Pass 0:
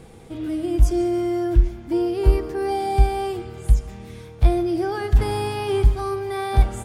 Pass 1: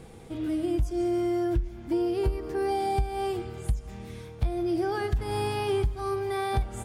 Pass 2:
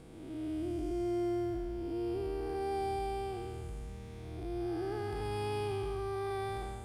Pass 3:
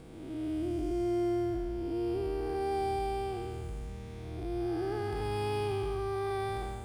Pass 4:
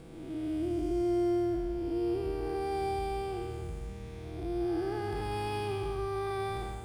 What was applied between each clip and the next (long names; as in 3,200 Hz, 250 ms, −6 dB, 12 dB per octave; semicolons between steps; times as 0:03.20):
downward compressor 10 to 1, threshold −20 dBFS, peak gain reduction 12.5 dB; level −2.5 dB
spectrum smeared in time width 406 ms; level −5.5 dB
running median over 3 samples; level +3 dB
convolution reverb RT60 0.95 s, pre-delay 6 ms, DRR 11.5 dB